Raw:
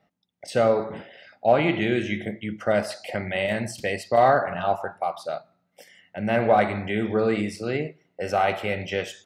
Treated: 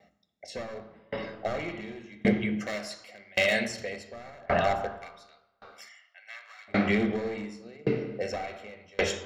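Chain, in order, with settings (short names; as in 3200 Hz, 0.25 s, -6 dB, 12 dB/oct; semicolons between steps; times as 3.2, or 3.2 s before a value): one-sided fold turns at -20 dBFS; 2.59–3.68 tilt +3 dB/oct; 5.01–6.68 HPF 1200 Hz 24 dB/oct; limiter -17.5 dBFS, peak gain reduction 10.5 dB; flange 0.31 Hz, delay 10 ms, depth 4.2 ms, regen +84%; reverb RT60 2.0 s, pre-delay 3 ms, DRR 6 dB; dB-ramp tremolo decaying 0.89 Hz, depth 32 dB; gain +5 dB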